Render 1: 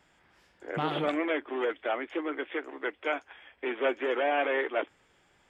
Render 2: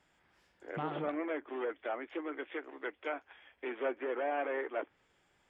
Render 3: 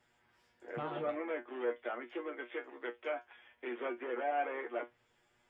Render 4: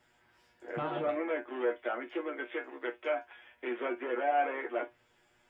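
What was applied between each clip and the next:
treble ducked by the level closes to 1800 Hz, closed at -26.5 dBFS; gain -6.5 dB
resonator 120 Hz, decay 0.16 s, harmonics all, mix 90%; gain +5.5 dB
non-linear reverb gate 80 ms falling, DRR 9 dB; gain +4 dB

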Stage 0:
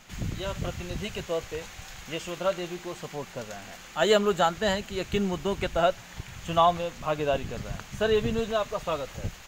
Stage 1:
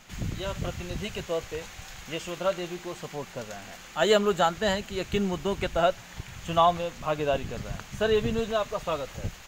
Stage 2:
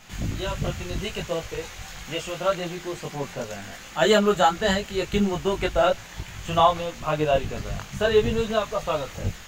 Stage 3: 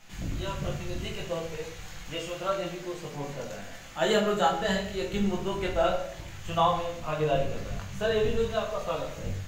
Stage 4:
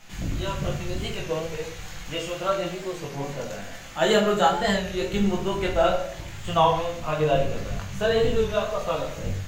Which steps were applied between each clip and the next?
nothing audible
chorus voices 2, 0.76 Hz, delay 20 ms, depth 1.7 ms; gain +7 dB
shoebox room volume 150 m³, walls mixed, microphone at 0.72 m; gain -7.5 dB
record warp 33 1/3 rpm, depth 100 cents; gain +4.5 dB

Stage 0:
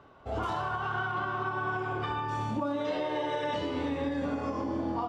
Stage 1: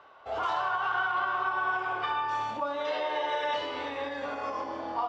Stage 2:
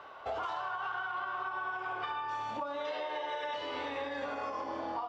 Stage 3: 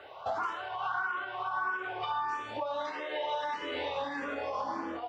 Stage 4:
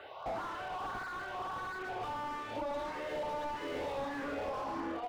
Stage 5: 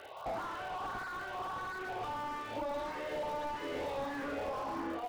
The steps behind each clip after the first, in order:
three-band isolator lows -21 dB, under 530 Hz, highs -20 dB, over 6400 Hz; gain +4.5 dB
compressor 10:1, threshold -39 dBFS, peak gain reduction 14.5 dB; gain +5 dB
endless phaser +1.6 Hz; gain +5.5 dB
slew limiter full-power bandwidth 13 Hz
crackle 170/s -46 dBFS

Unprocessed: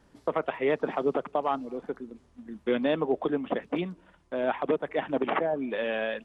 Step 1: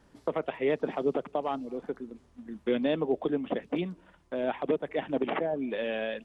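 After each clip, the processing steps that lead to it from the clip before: dynamic EQ 1200 Hz, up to -7 dB, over -42 dBFS, Q 0.94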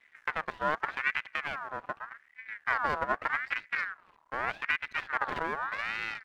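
tilt shelf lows +5 dB; half-wave rectifier; ring modulator with a swept carrier 1500 Hz, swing 35%, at 0.83 Hz

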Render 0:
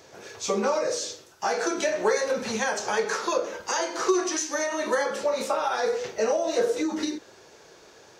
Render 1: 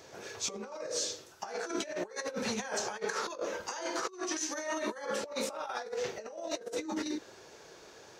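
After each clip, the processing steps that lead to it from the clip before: negative-ratio compressor -30 dBFS, ratio -0.5; gain -6 dB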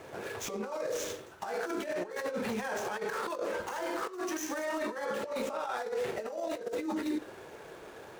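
median filter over 9 samples; limiter -33 dBFS, peak gain reduction 10 dB; on a send at -18 dB: reverb, pre-delay 9 ms; on the sum: gain +6.5 dB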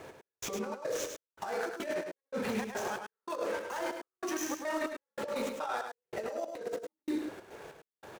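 step gate "x...xxx.x" 142 bpm -60 dB; on a send: echo 0.104 s -6.5 dB

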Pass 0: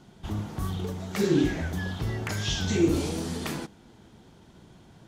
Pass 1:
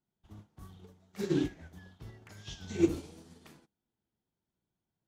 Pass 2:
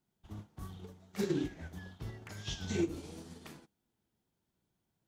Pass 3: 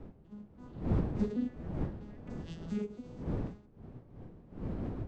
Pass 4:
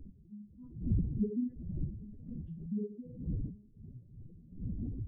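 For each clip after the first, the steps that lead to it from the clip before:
upward expander 2.5:1, over -40 dBFS; gain -2 dB
compressor 12:1, threshold -34 dBFS, peak gain reduction 15.5 dB; gain +5 dB
arpeggiated vocoder major triad, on E3, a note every 0.27 s; wind noise 230 Hz -39 dBFS
spectral contrast raised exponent 2.6

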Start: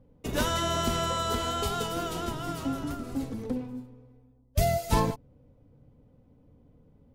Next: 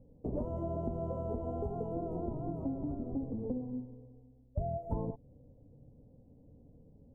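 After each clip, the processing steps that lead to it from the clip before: inverse Chebyshev low-pass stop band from 1500 Hz, stop band 40 dB; compressor 4:1, threshold -33 dBFS, peak gain reduction 11.5 dB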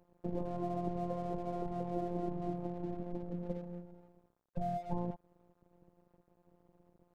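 robotiser 175 Hz; crossover distortion -59 dBFS; gain +2 dB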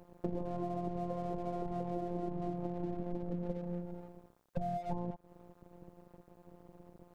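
compressor 6:1, threshold -44 dBFS, peak gain reduction 13.5 dB; gain +10.5 dB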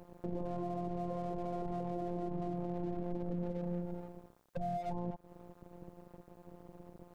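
limiter -31 dBFS, peak gain reduction 8.5 dB; gain +3 dB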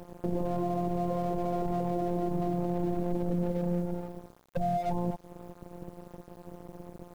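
bit-crush 11-bit; gain +8 dB

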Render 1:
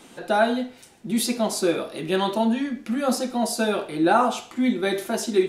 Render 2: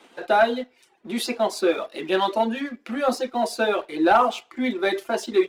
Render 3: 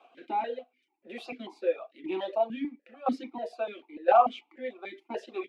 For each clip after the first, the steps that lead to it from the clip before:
reverb removal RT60 0.58 s; three-band isolator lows -22 dB, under 280 Hz, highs -12 dB, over 4200 Hz; sample leveller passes 1
tremolo saw down 0.98 Hz, depth 80%; vowel sequencer 6.8 Hz; gain +4 dB

